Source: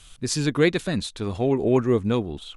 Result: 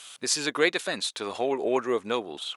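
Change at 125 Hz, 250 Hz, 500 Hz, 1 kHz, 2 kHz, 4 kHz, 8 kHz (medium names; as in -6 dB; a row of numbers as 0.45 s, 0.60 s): -21.5 dB, -10.0 dB, -4.0 dB, +1.5 dB, +1.5 dB, +2.5 dB, +2.5 dB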